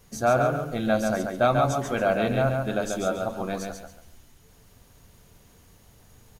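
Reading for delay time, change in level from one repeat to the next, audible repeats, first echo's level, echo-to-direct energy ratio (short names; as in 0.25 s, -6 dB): 0.139 s, -11.0 dB, 3, -4.5 dB, -4.0 dB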